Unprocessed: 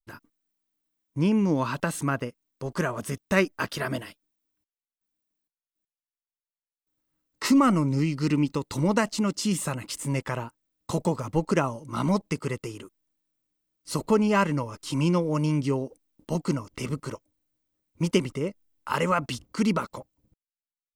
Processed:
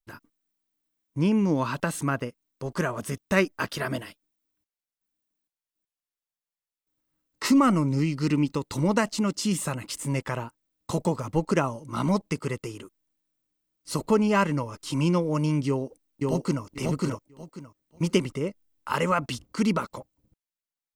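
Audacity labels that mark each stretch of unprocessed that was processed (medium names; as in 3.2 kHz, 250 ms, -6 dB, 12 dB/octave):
15.670000	16.640000	echo throw 540 ms, feedback 20%, level -1.5 dB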